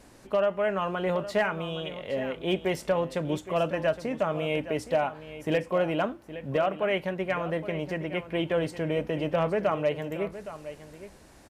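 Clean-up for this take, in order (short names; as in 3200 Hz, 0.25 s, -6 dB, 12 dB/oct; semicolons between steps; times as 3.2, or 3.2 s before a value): clip repair -17 dBFS; inverse comb 0.816 s -13.5 dB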